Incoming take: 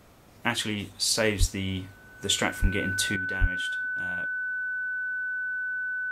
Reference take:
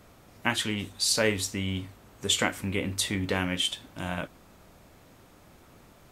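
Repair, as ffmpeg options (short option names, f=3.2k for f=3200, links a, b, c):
-filter_complex "[0:a]bandreject=f=1.5k:w=30,asplit=3[a][b][c];[a]afade=t=out:st=1.39:d=0.02[d];[b]highpass=f=140:w=0.5412,highpass=f=140:w=1.3066,afade=t=in:st=1.39:d=0.02,afade=t=out:st=1.51:d=0.02[e];[c]afade=t=in:st=1.51:d=0.02[f];[d][e][f]amix=inputs=3:normalize=0,asplit=3[g][h][i];[g]afade=t=out:st=2.61:d=0.02[j];[h]highpass=f=140:w=0.5412,highpass=f=140:w=1.3066,afade=t=in:st=2.61:d=0.02,afade=t=out:st=2.73:d=0.02[k];[i]afade=t=in:st=2.73:d=0.02[l];[j][k][l]amix=inputs=3:normalize=0,asplit=3[m][n][o];[m]afade=t=out:st=3.4:d=0.02[p];[n]highpass=f=140:w=0.5412,highpass=f=140:w=1.3066,afade=t=in:st=3.4:d=0.02,afade=t=out:st=3.52:d=0.02[q];[o]afade=t=in:st=3.52:d=0.02[r];[p][q][r]amix=inputs=3:normalize=0,asetnsamples=n=441:p=0,asendcmd='3.16 volume volume 10.5dB',volume=0dB"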